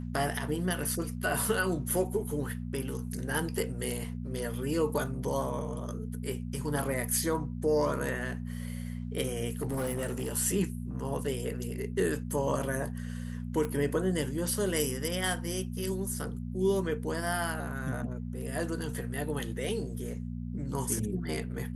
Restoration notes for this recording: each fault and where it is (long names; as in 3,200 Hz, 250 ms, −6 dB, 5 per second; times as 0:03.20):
mains hum 60 Hz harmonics 4 −37 dBFS
0:05.06: drop-out 2.8 ms
0:09.60–0:10.33: clipping −28 dBFS
0:13.65: click −21 dBFS